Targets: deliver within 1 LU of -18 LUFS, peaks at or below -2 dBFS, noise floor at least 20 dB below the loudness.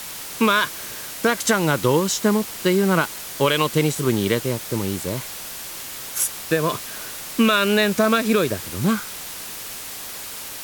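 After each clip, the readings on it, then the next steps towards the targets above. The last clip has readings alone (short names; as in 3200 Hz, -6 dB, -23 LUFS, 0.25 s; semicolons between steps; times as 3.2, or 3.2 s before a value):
noise floor -34 dBFS; noise floor target -42 dBFS; loudness -22.0 LUFS; peak -6.0 dBFS; loudness target -18.0 LUFS
-> denoiser 8 dB, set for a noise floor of -34 dBFS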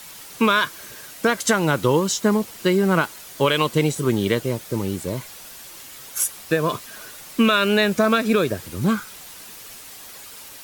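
noise floor -41 dBFS; loudness -21.0 LUFS; peak -7.0 dBFS; loudness target -18.0 LUFS
-> gain +3 dB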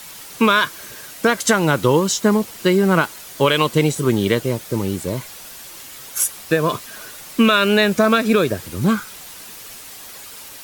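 loudness -18.0 LUFS; peak -4.0 dBFS; noise floor -38 dBFS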